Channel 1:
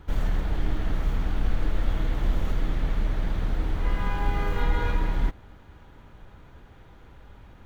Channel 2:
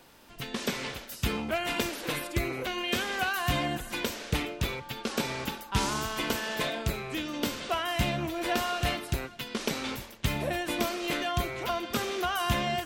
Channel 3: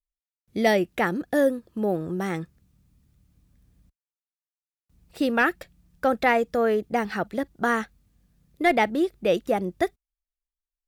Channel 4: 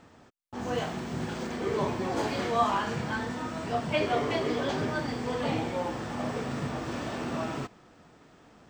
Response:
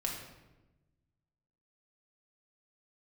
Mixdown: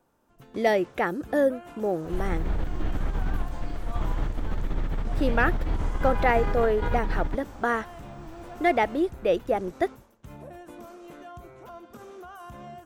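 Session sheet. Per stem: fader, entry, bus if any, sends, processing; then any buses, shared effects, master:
-0.5 dB, 2.05 s, no send, negative-ratio compressor -24 dBFS, ratio -0.5
-10.0 dB, 0.00 s, no send, band shelf 3000 Hz -9 dB; limiter -23.5 dBFS, peak gain reduction 9.5 dB
0.0 dB, 0.00 s, no send, bell 200 Hz -7 dB
-10.5 dB, 1.35 s, no send, rippled Chebyshev high-pass 210 Hz, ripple 9 dB; tilt +4.5 dB/oct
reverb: off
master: high shelf 2400 Hz -8.5 dB

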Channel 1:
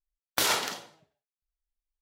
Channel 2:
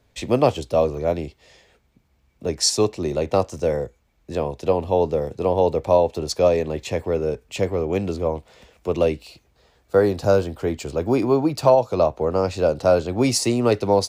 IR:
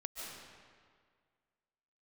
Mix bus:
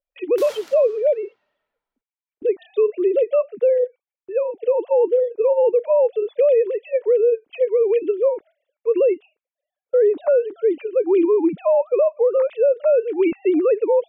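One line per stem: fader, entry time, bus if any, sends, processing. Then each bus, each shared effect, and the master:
-7.0 dB, 0.00 s, send -13.5 dB, auto duck -9 dB, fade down 0.30 s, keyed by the second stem
+0.5 dB, 0.00 s, no send, sine-wave speech; gate with hold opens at -44 dBFS; resonant low shelf 610 Hz +6 dB, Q 1.5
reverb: on, RT60 1.9 s, pre-delay 0.105 s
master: limiter -10.5 dBFS, peak gain reduction 11.5 dB

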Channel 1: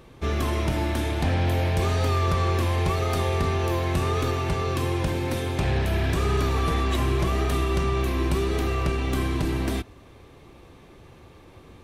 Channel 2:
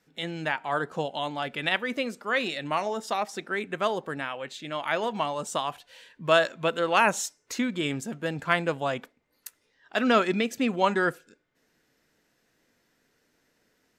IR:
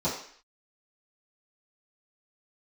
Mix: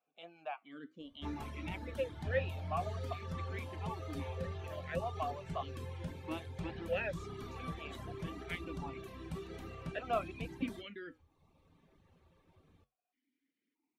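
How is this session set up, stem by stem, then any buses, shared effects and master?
-14.0 dB, 1.00 s, send -17 dB, dry
+1.0 dB, 0.00 s, no send, vowel sequencer 1.6 Hz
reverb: on, RT60 0.55 s, pre-delay 3 ms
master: reverb removal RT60 1 s; high shelf 9100 Hz -3.5 dB; flange 0.58 Hz, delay 3.2 ms, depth 8.5 ms, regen -70%

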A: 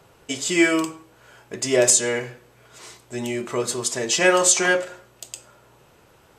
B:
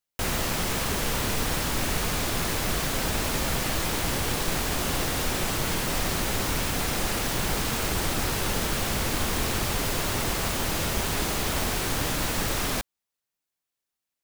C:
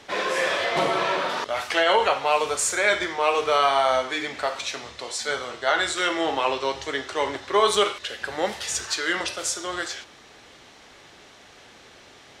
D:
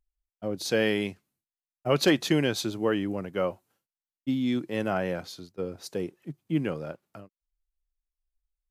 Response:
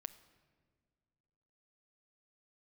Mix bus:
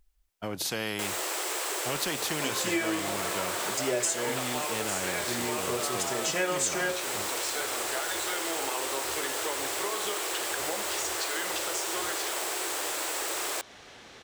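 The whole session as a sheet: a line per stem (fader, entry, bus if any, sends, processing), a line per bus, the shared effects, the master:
-2.0 dB, 2.15 s, no send, dry
0.0 dB, 0.80 s, no send, elliptic high-pass 340 Hz, stop band 40 dB; bell 7900 Hz +8 dB 0.31 oct
-0.5 dB, 2.30 s, no send, compressor, threshold -27 dBFS, peak gain reduction 12.5 dB
-1.0 dB, 0.00 s, no send, spectral compressor 2:1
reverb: off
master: compressor 2.5:1, threshold -30 dBFS, peak gain reduction 11.5 dB

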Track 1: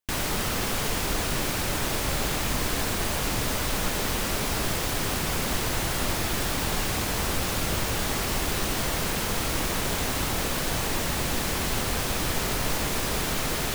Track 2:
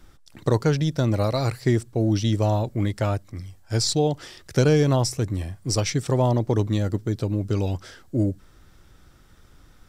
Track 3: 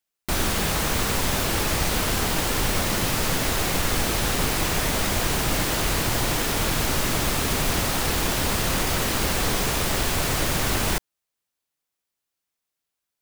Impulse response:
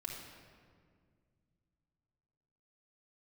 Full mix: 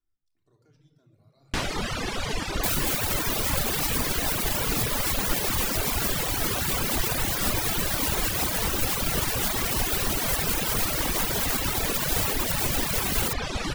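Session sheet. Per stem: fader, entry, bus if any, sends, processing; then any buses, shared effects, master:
+3.0 dB, 1.45 s, no bus, no send, LPF 4500 Hz 12 dB/oct; reverb removal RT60 1.1 s
-13.5 dB, 0.00 s, bus A, send -21 dB, limiter -16.5 dBFS, peak gain reduction 9 dB
-7.0 dB, 2.35 s, bus A, no send, dry
bus A: 0.0 dB, bit-crush 5-bit; limiter -20.5 dBFS, peak gain reduction 3 dB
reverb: on, RT60 2.0 s, pre-delay 3 ms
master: reverb removal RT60 0.77 s; high shelf 7500 Hz +9.5 dB

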